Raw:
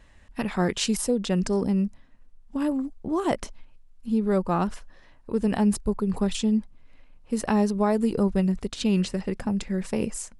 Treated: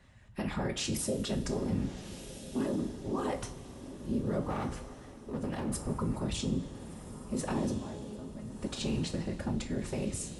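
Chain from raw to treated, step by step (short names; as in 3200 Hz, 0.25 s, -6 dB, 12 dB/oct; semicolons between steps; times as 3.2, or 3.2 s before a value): whisperiser; limiter -20.5 dBFS, peak gain reduction 11 dB; 4.5–5.73 overloaded stage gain 27.5 dB; 7.78–8.61 resonator 210 Hz, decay 0.94 s, mix 80%; diffused feedback echo 1.38 s, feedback 40%, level -12 dB; reverb, pre-delay 3 ms, DRR 4 dB; gain -5.5 dB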